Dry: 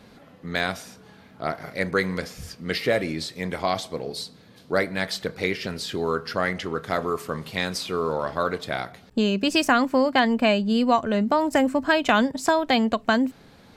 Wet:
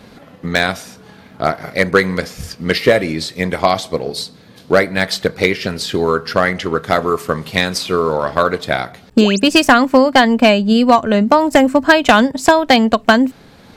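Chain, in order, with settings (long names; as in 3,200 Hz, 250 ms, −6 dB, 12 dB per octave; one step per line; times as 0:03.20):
sound drawn into the spectrogram rise, 0:09.20–0:09.40, 240–9,700 Hz −33 dBFS
transient designer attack +5 dB, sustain −1 dB
hard clipping −10 dBFS, distortion −17 dB
level +8.5 dB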